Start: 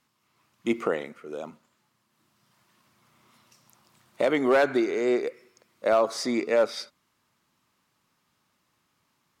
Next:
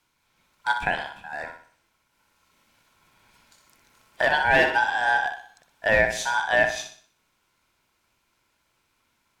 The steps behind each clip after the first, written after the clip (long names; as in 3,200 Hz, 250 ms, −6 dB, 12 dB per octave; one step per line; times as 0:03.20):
ring modulation 1,200 Hz
flutter between parallel walls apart 10.5 metres, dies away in 0.47 s
level +4 dB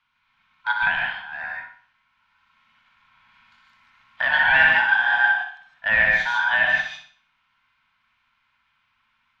drawn EQ curve 250 Hz 0 dB, 370 Hz −20 dB, 1,100 Hz +10 dB, 3,200 Hz +8 dB, 8,800 Hz −21 dB
reverb whose tail is shaped and stops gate 180 ms rising, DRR −0.5 dB
level −7 dB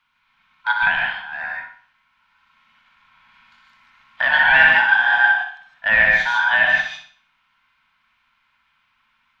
parametric band 99 Hz −6.5 dB 0.59 octaves
level +3.5 dB